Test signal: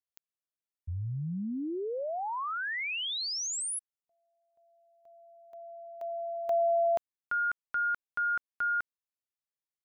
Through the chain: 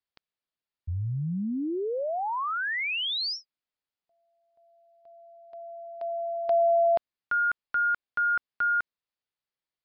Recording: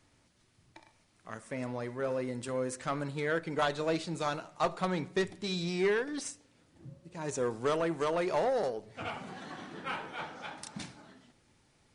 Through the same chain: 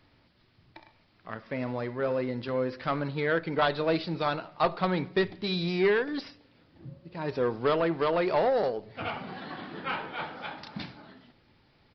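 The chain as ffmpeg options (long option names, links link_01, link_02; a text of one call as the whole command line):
ffmpeg -i in.wav -af "aresample=11025,aresample=44100,volume=4.5dB" out.wav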